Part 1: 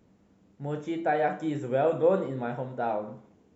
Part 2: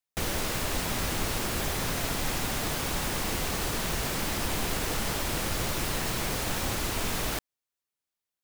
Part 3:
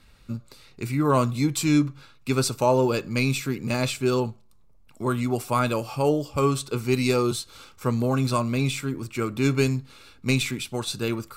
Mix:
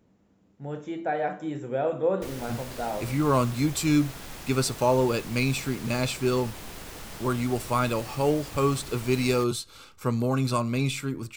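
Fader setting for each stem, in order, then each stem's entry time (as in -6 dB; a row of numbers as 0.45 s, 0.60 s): -2.0 dB, -11.0 dB, -2.0 dB; 0.00 s, 2.05 s, 2.20 s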